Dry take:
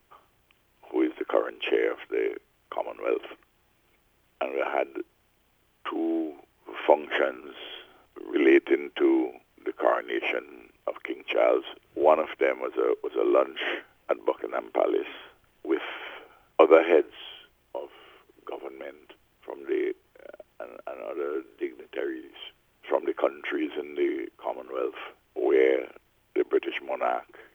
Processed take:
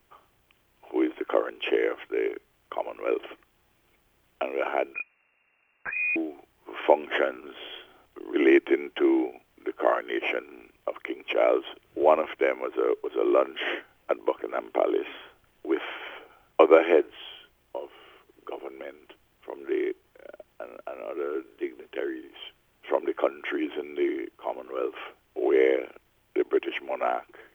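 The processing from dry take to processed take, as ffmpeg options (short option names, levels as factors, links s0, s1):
-filter_complex "[0:a]asettb=1/sr,asplit=3[s0][s1][s2];[s0]atrim=end=4.944[s3];[s1]atrim=start=4.94:end=6.16,asetpts=PTS-STARTPTS,afade=t=in:d=0.004:c=qsin,afade=t=out:st=1.216:d=0.004:c=qsin,lowpass=f=2400:t=q:w=0.5098,lowpass=f=2400:t=q:w=0.6013,lowpass=f=2400:t=q:w=0.9,lowpass=f=2400:t=q:w=2.563,afreqshift=-2800[s4];[s2]atrim=start=6.156[s5];[s3][s4]acrossfade=d=0.004:c1=hsin:c2=qsin[s6];[s6][s5]acrossfade=d=0.004:c1=qsin:c2=hsin"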